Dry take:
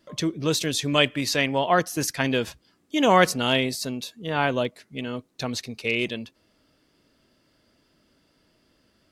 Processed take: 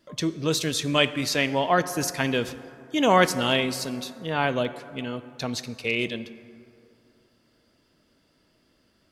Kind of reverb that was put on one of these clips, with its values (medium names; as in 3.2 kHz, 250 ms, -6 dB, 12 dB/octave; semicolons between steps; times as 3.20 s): plate-style reverb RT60 2.7 s, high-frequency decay 0.4×, DRR 12.5 dB; trim -1 dB